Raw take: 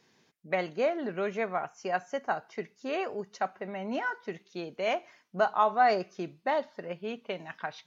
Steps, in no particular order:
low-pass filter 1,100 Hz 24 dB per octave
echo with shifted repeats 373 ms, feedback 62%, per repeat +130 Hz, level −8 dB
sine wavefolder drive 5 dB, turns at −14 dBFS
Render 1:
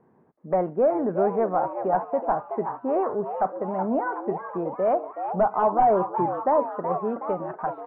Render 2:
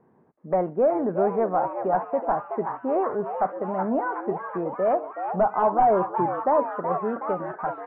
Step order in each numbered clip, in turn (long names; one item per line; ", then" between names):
sine wavefolder, then echo with shifted repeats, then low-pass filter
sine wavefolder, then low-pass filter, then echo with shifted repeats